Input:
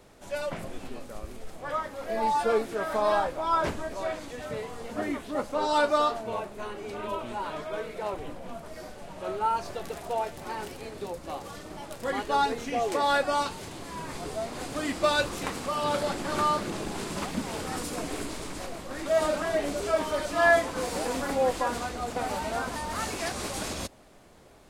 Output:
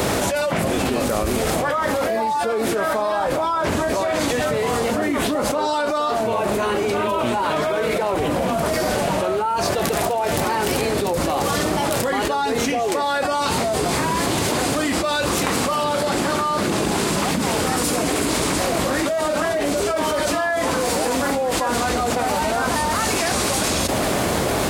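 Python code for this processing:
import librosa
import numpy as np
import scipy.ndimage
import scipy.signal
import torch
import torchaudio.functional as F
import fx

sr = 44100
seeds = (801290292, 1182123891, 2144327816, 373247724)

y = fx.edit(x, sr, fx.reverse_span(start_s=13.58, length_s=0.94), tone=tone)
y = scipy.signal.sosfilt(scipy.signal.butter(2, 65.0, 'highpass', fs=sr, output='sos'), y)
y = fx.high_shelf(y, sr, hz=12000.0, db=5.5)
y = fx.env_flatten(y, sr, amount_pct=100)
y = F.gain(torch.from_numpy(y), -3.5).numpy()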